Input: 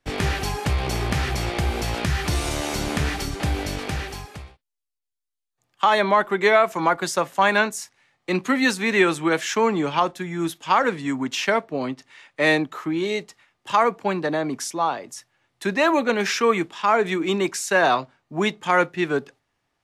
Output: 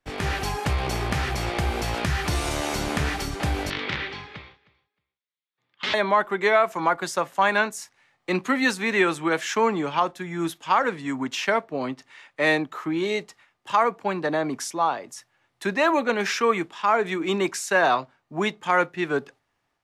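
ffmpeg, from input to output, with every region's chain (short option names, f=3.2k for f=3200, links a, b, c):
-filter_complex "[0:a]asettb=1/sr,asplit=3[a][b][c];[a]atrim=end=3.704[d];[b]atrim=start=3.7:end=5.94,asetpts=PTS-STARTPTS,afade=t=in:d=0.004:c=qsin,afade=t=out:st=2.236:d=0.004:c=qsin,aeval=exprs='(mod(8.41*val(0)+1,2)-1)/8.41':c=same,highpass=120,equalizer=f=710:t=q:w=4:g=-9,equalizer=f=2.1k:t=q:w=4:g=7,equalizer=f=3.5k:t=q:w=4:g=7,lowpass=f=4.4k:w=0.5412,lowpass=f=4.4k:w=1.3066,aecho=1:1:311|622:0.075|0.0112,atrim=end_sample=98784[e];[c]atrim=start=5.936[f];[d][e]acrossfade=d=0.004:c1=hsin:c2=qsin[g];[g][f]acrossfade=d=0.004:c1=qsin:c2=hsin,equalizer=f=1.1k:w=0.56:g=3.5,dynaudnorm=f=170:g=3:m=5dB,volume=-7dB"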